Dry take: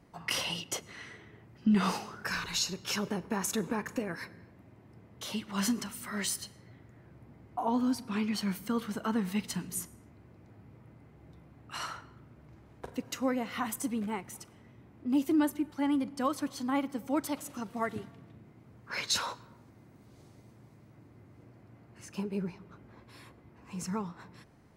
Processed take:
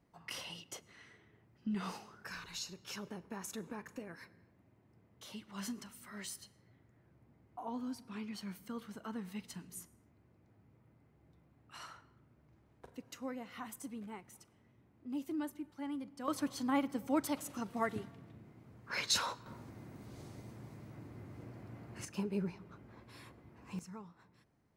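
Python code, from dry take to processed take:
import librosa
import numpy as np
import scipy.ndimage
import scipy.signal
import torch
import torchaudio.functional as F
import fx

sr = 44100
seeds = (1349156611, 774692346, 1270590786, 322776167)

y = fx.gain(x, sr, db=fx.steps((0.0, -12.0), (16.28, -2.0), (19.46, 5.5), (22.05, -2.0), (23.79, -14.5)))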